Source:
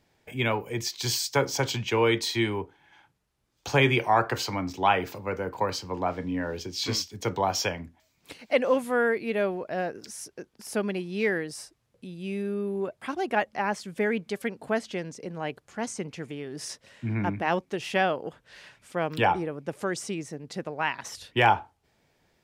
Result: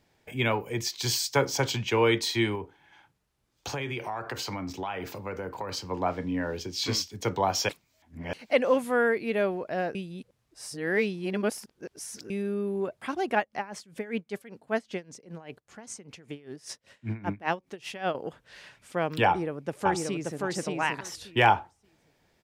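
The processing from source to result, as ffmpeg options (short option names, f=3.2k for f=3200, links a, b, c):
-filter_complex "[0:a]asettb=1/sr,asplit=3[a][b][c];[a]atrim=end=2.554[d];[b]atrim=start=2.55:end=5.77,asetpts=PTS-STARTPTS,afade=t=in:d=0.004:c=qsin,afade=t=out:st=3.216:d=0.004:c=qsin,acompressor=threshold=-30dB:ratio=6:attack=3.2:release=140:knee=1:detection=peak[e];[c]atrim=start=5.766[f];[d][e]acrossfade=d=0.004:c1=hsin:c2=qsin[g];[g][f]acrossfade=d=0.004:c1=qsin:c2=hsin,asettb=1/sr,asplit=3[h][i][j];[h]atrim=end=13.384[k];[i]atrim=start=13.38:end=18.15,asetpts=PTS-STARTPTS,afade=t=in:d=0.004:c=qsin,afade=t=out:st=4.766:d=0.004:c=qsin,aeval=exprs='val(0)*pow(10,-19*(0.5-0.5*cos(2*PI*5.1*n/s))/20)':c=same[l];[j]atrim=start=18.146[m];[k][l]acrossfade=d=0.004:c1=hsin:c2=qsin[n];[n][m]acrossfade=d=0.004:c1=qsin:c2=hsin,asplit=2[o][p];[p]afade=t=in:st=19.27:d=0.01,afade=t=out:st=20.42:d=0.01,aecho=0:1:580|1160|1740:0.794328|0.119149|0.0178724[q];[o][q]amix=inputs=2:normalize=0,asplit=5[r][s][t][u][v];[r]atrim=end=7.692[w];[s]atrim=start=7.688:end=8.332,asetpts=PTS-STARTPTS,areverse[x];[t]atrim=start=8.328:end=9.952[y];[u]atrim=start=9.948:end=12.302,asetpts=PTS-STARTPTS,areverse[z];[v]atrim=start=12.298[aa];[w][x]acrossfade=d=0.004:c1=hsin:c2=hsin[ab];[ab][y]acrossfade=d=0.004:c1=hsin:c2=hsin[ac];[ac][z]acrossfade=d=0.004:c1=hsin:c2=hsin[ad];[ad][aa]acrossfade=d=0.004:c1=hsin:c2=hsin"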